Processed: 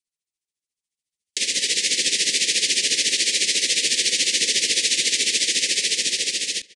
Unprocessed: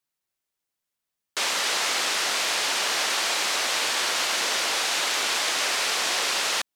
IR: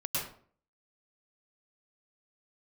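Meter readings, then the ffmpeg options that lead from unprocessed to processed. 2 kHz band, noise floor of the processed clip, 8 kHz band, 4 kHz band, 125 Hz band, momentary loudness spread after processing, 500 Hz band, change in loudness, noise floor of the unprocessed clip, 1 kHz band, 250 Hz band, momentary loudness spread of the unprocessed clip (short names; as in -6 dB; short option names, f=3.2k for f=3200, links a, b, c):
0.0 dB, under -85 dBFS, +7.0 dB, +5.0 dB, n/a, 3 LU, -3.0 dB, +4.5 dB, -85 dBFS, under -40 dB, +4.0 dB, 0 LU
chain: -filter_complex "[0:a]highshelf=f=2.4k:g=12,asplit=2[a][b];[b]adelay=136,lowpass=f=3.3k:p=1,volume=-21.5dB,asplit=2[c][d];[d]adelay=136,lowpass=f=3.3k:p=1,volume=0.5,asplit=2[e][f];[f]adelay=136,lowpass=f=3.3k:p=1,volume=0.5,asplit=2[g][h];[h]adelay=136,lowpass=f=3.3k:p=1,volume=0.5[i];[a][c][e][g][i]amix=inputs=5:normalize=0,acrossover=split=350[j][k];[k]acompressor=threshold=-26dB:ratio=2[l];[j][l]amix=inputs=2:normalize=0,agate=range=-7dB:threshold=-44dB:ratio=16:detection=peak,asuperstop=centerf=990:order=12:qfactor=0.75,aresample=22050,aresample=44100,tremolo=f=14:d=0.71,dynaudnorm=f=240:g=11:m=10dB,lowshelf=f=390:g=5,volume=-2.5dB"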